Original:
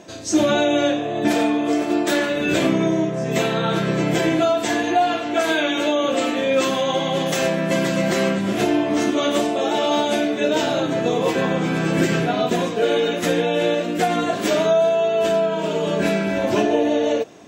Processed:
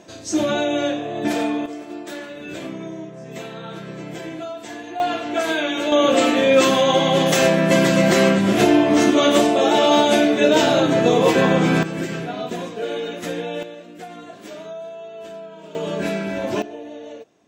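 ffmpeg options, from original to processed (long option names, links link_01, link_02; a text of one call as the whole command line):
ffmpeg -i in.wav -af "asetnsamples=nb_out_samples=441:pad=0,asendcmd='1.66 volume volume -13dB;5 volume volume -2dB;5.92 volume volume 4.5dB;11.83 volume volume -7.5dB;13.63 volume volume -17dB;15.75 volume volume -4dB;16.62 volume volume -16.5dB',volume=-3dB" out.wav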